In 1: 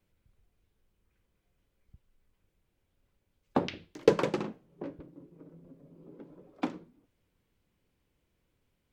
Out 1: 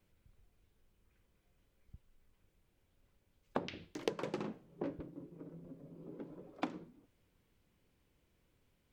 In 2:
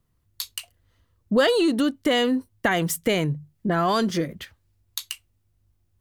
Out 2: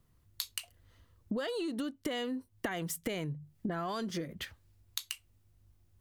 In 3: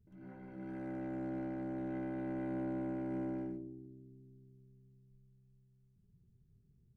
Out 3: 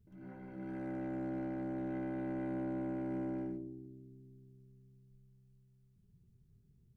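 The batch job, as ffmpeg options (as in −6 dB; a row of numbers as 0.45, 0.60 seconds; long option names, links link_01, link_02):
-af "acompressor=threshold=-35dB:ratio=10,volume=1.5dB"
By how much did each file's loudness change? −12.0, −14.5, +0.5 LU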